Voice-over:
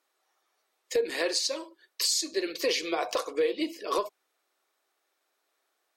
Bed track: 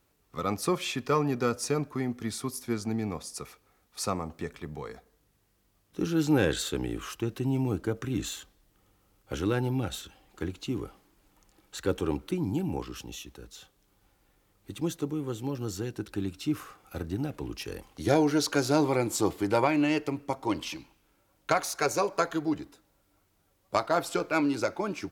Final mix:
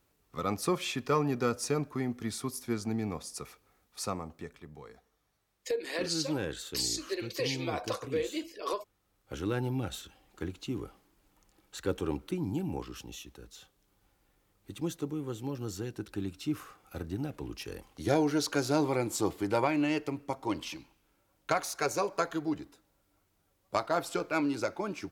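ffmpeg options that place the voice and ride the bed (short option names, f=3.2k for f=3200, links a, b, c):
-filter_complex "[0:a]adelay=4750,volume=-5.5dB[a];[1:a]volume=4.5dB,afade=t=out:st=3.73:d=0.93:silence=0.398107,afade=t=in:st=9.04:d=0.58:silence=0.473151[b];[a][b]amix=inputs=2:normalize=0"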